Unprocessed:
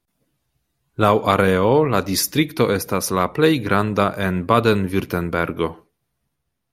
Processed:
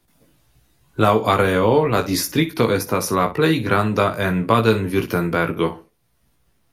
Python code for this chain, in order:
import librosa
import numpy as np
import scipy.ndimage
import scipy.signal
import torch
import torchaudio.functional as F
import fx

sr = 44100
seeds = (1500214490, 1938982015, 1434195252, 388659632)

p1 = x + fx.room_early_taps(x, sr, ms=(18, 61), db=(-5.5, -14.5), dry=0)
p2 = fx.band_squash(p1, sr, depth_pct=40)
y = p2 * 10.0 ** (-1.0 / 20.0)